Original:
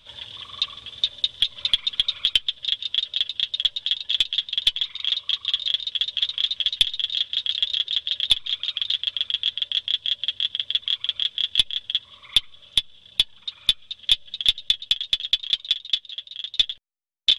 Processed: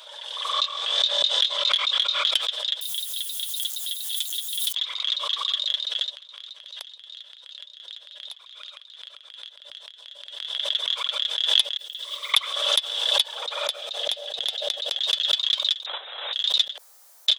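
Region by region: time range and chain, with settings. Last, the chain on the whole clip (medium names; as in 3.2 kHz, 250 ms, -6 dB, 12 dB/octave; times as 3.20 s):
0.52–2.31 s: low-pass 8.3 kHz 24 dB/octave + doubling 24 ms -4 dB
2.81–4.75 s: jump at every zero crossing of -30 dBFS + pre-emphasis filter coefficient 0.97
6.10–10.56 s: compression 16:1, threshold -32 dBFS + tremolo 2.7 Hz, depth 67%
11.77–12.34 s: block-companded coder 7-bit + amplifier tone stack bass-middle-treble 10-0-1
13.35–15.01 s: high-order bell 560 Hz +11 dB 1.2 oct + compression 4:1, threshold -20 dBFS
15.86–16.33 s: one-bit delta coder 32 kbps, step -30 dBFS + careless resampling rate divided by 6×, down none, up filtered + three bands expanded up and down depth 100%
whole clip: steep high-pass 520 Hz 36 dB/octave; peaking EQ 2.6 kHz -11.5 dB 1.3 oct; swell ahead of each attack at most 42 dB/s; trim +5 dB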